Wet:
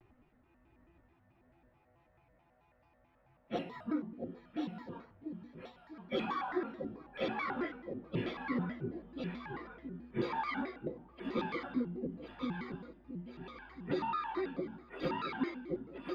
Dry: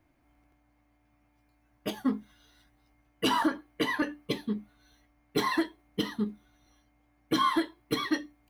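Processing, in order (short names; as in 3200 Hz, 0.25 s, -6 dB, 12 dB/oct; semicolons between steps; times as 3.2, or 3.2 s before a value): compressor 8:1, threshold -34 dBFS, peak gain reduction 13 dB; on a send: split-band echo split 550 Hz, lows 0.355 s, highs 0.545 s, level -4 dB; on the sum: plain phase-vocoder stretch 1.9×; air absorption 360 m; shaped vibrato square 4.6 Hz, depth 250 cents; gain +4.5 dB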